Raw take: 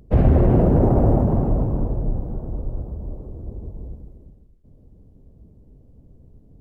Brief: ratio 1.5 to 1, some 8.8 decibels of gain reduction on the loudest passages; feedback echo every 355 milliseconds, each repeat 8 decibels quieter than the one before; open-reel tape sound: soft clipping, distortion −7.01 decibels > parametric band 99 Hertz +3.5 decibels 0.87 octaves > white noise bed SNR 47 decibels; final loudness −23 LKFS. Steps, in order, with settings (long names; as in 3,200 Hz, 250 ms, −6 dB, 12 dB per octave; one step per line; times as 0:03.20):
downward compressor 1.5 to 1, threshold −36 dBFS
repeating echo 355 ms, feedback 40%, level −8 dB
soft clipping −28.5 dBFS
parametric band 99 Hz +3.5 dB 0.87 octaves
white noise bed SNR 47 dB
level +11 dB